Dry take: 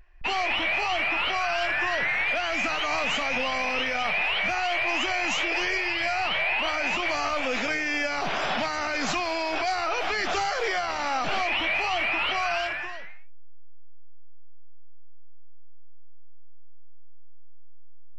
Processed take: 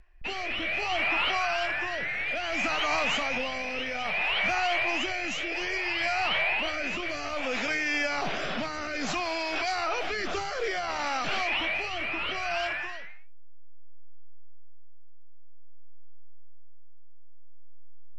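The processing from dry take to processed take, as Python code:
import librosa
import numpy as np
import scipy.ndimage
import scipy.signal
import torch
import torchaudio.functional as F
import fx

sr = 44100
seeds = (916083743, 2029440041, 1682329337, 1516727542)

y = fx.rotary(x, sr, hz=0.6)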